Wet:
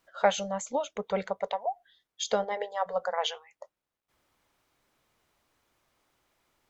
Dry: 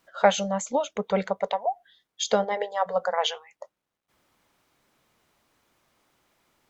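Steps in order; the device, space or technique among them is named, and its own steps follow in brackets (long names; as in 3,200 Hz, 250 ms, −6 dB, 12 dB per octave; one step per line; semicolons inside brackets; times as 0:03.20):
low shelf boost with a cut just above (low-shelf EQ 76 Hz +5.5 dB; parametric band 190 Hz −4 dB 0.99 octaves)
level −4.5 dB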